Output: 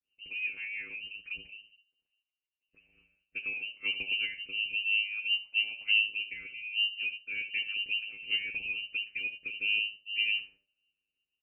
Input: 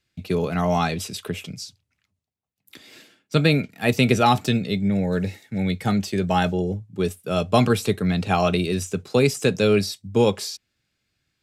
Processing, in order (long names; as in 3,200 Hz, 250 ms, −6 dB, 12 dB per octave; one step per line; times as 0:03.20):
downward compressor, threshold −20 dBFS, peak gain reduction 8.5 dB
channel vocoder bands 32, saw 105 Hz
voice inversion scrambler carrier 2,900 Hz
flat-topped bell 1,000 Hz −12.5 dB
single-tap delay 75 ms −13 dB
rotating-speaker cabinet horn 6 Hz, later 0.6 Hz, at 0:01.25
hum removal 197.2 Hz, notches 9
level −3.5 dB